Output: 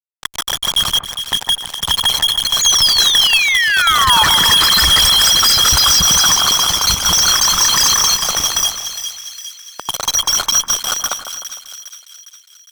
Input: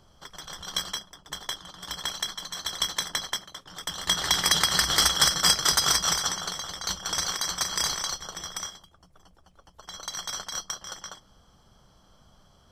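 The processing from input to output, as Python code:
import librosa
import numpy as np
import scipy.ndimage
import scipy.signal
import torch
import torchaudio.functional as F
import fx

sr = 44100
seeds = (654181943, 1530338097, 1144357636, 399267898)

y = fx.envelope_sharpen(x, sr, power=3.0)
y = fx.fuzz(y, sr, gain_db=45.0, gate_db=-38.0)
y = fx.spec_paint(y, sr, seeds[0], shape='fall', start_s=2.61, length_s=1.63, low_hz=840.0, high_hz=6900.0, level_db=-18.0)
y = fx.echo_split(y, sr, split_hz=1800.0, low_ms=152, high_ms=408, feedback_pct=52, wet_db=-9.0)
y = F.gain(torch.from_numpy(y), 3.0).numpy()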